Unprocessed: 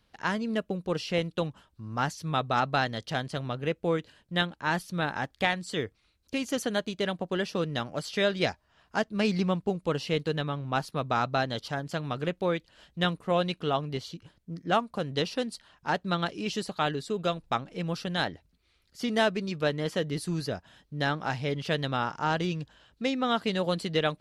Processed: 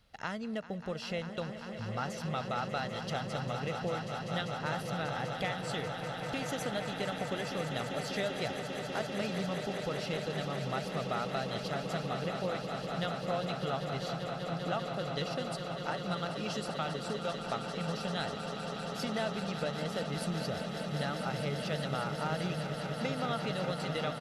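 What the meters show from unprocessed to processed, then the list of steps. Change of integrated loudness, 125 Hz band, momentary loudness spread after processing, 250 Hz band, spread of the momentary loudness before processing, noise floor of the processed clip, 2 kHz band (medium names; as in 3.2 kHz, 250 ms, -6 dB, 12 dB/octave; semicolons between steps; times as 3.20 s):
-5.5 dB, -4.0 dB, 3 LU, -6.0 dB, 7 LU, -41 dBFS, -6.5 dB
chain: comb 1.5 ms, depth 41%; compression 2.5:1, threshold -38 dBFS, peak gain reduction 13 dB; on a send: echo with a slow build-up 197 ms, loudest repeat 8, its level -11 dB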